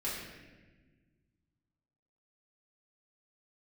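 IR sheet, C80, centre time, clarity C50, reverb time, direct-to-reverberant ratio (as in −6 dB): 3.0 dB, 77 ms, 1.0 dB, 1.3 s, −9.0 dB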